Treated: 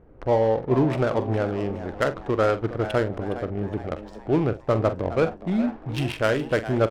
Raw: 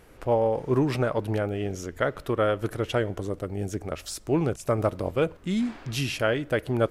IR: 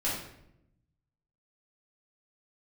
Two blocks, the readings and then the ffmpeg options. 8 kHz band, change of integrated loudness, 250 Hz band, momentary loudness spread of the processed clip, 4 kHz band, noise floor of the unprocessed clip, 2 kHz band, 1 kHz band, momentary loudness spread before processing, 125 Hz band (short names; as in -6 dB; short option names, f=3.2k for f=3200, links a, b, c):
n/a, +2.5 dB, +3.0 dB, 8 LU, -2.0 dB, -50 dBFS, +2.0 dB, +3.0 dB, 8 LU, +2.5 dB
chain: -filter_complex "[0:a]adynamicsmooth=sensitivity=3.5:basefreq=690,asplit=2[a][b];[b]adelay=45,volume=-12dB[c];[a][c]amix=inputs=2:normalize=0,asplit=5[d][e][f][g][h];[e]adelay=414,afreqshift=110,volume=-13.5dB[i];[f]adelay=828,afreqshift=220,volume=-20.8dB[j];[g]adelay=1242,afreqshift=330,volume=-28.2dB[k];[h]adelay=1656,afreqshift=440,volume=-35.5dB[l];[d][i][j][k][l]amix=inputs=5:normalize=0,volume=2.5dB"